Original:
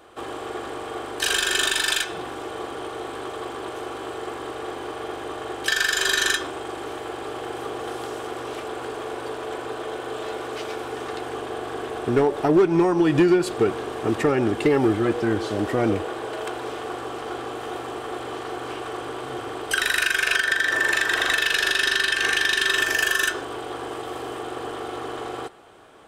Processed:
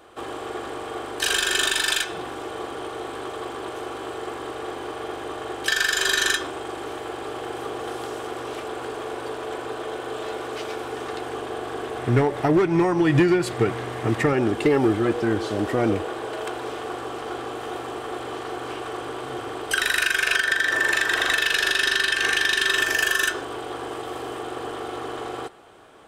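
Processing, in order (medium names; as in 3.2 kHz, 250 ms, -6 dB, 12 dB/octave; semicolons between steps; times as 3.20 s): 11.98–14.33 s: graphic EQ with 31 bands 125 Hz +11 dB, 400 Hz -4 dB, 2 kHz +7 dB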